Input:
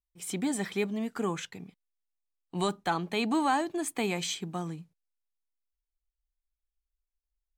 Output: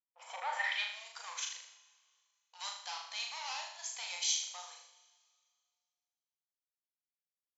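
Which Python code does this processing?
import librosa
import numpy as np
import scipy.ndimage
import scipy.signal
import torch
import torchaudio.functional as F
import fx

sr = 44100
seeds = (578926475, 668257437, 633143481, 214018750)

y = fx.peak_eq(x, sr, hz=930.0, db=9.5, octaves=0.39)
y = fx.leveller(y, sr, passes=3)
y = fx.rider(y, sr, range_db=10, speed_s=2.0)
y = fx.brickwall_bandpass(y, sr, low_hz=480.0, high_hz=7600.0)
y = fx.rev_plate(y, sr, seeds[0], rt60_s=2.1, hf_ratio=1.0, predelay_ms=0, drr_db=16.0)
y = fx.filter_sweep_bandpass(y, sr, from_hz=910.0, to_hz=5500.0, start_s=0.35, end_s=0.97, q=1.8)
y = fx.room_flutter(y, sr, wall_m=6.7, rt60_s=0.61)
y = y * 10.0 ** (-6.5 / 20.0)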